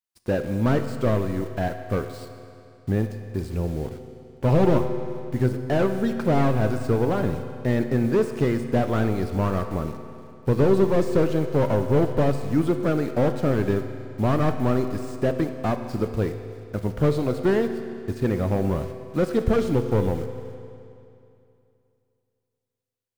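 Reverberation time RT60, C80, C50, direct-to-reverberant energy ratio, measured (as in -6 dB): 2.7 s, 9.0 dB, 8.0 dB, 7.0 dB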